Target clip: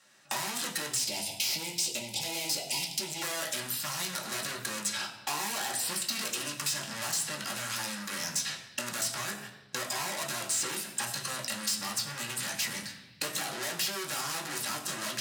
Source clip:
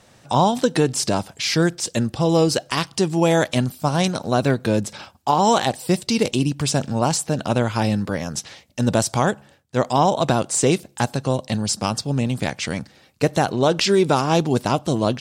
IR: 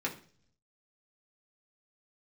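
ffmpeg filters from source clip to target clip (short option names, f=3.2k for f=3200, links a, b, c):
-filter_complex "[0:a]agate=range=-24dB:threshold=-37dB:ratio=16:detection=peak,aeval=exprs='(tanh(50.1*val(0)+0.15)-tanh(0.15))/50.1':c=same,asettb=1/sr,asplit=3[a][b][c];[a]atrim=end=0.944[d];[b]atrim=start=0.94:end=3.22,asetpts=PTS-STARTPTS,afade=t=in:d=0.004:c=qsin,afade=t=out:st=2.276:d=0.004:c=qsin,asuperstop=centerf=1400:order=20:qfactor=1.3[e];[c]atrim=start=3.216[f];[d][e]acrossfade=d=0.004:c1=hsin:c2=qsin[g];[g][f]acrossfade=d=0.004:c1=qsin:c2=hsin,aeval=exprs='0.0335*(abs(mod(val(0)/0.0335+3,4)-2)-1)':c=same[h];[1:a]atrim=start_sample=2205,asetrate=32193,aresample=44100[i];[h][i]afir=irnorm=-1:irlink=0,acrossover=split=1100|5800[j][k][l];[j]acompressor=threshold=-42dB:ratio=4[m];[k]acompressor=threshold=-52dB:ratio=4[n];[l]acompressor=threshold=-53dB:ratio=4[o];[m][n][o]amix=inputs=3:normalize=0,highpass=f=200:p=1,tiltshelf=f=1.2k:g=-10,volume=8.5dB"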